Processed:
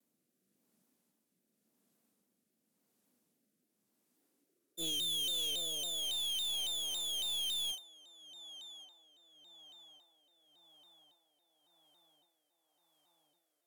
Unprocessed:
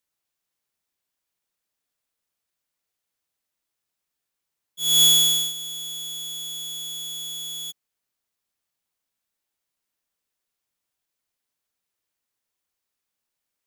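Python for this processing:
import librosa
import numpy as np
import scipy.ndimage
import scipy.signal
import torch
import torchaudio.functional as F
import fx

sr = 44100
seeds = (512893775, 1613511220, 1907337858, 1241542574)

y = 10.0 ** (-14.0 / 20.0) * np.tanh(x / 10.0 ** (-14.0 / 20.0))
y = fx.tilt_shelf(y, sr, db=9.0, hz=800.0)
y = fx.cheby_harmonics(y, sr, harmonics=(5,), levels_db=(-14,), full_scale_db=-18.0)
y = fx.peak_eq(y, sr, hz=12000.0, db=9.5, octaves=1.5)
y = fx.echo_filtered(y, sr, ms=1134, feedback_pct=73, hz=2600.0, wet_db=-20.5)
y = fx.filter_sweep_highpass(y, sr, from_hz=220.0, to_hz=780.0, start_s=3.85, end_s=6.23, q=3.8)
y = fx.room_flutter(y, sr, wall_m=6.5, rt60_s=0.24)
y = fx.rotary(y, sr, hz=0.9)
y = np.clip(y, -10.0 ** (-35.0 / 20.0), 10.0 ** (-35.0 / 20.0))
y = fx.vibrato_shape(y, sr, shape='saw_down', rate_hz=3.6, depth_cents=160.0)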